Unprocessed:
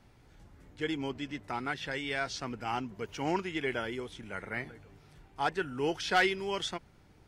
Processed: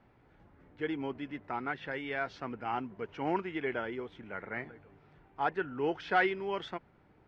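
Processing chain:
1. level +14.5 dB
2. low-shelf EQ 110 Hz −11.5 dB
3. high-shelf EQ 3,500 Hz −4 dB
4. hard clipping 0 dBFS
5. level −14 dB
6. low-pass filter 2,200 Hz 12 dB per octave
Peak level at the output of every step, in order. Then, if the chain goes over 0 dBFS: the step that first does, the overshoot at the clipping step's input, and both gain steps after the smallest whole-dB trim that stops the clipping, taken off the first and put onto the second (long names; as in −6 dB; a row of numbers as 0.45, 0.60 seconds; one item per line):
−2.5, −1.5, −2.5, −2.5, −16.5, −16.5 dBFS
no step passes full scale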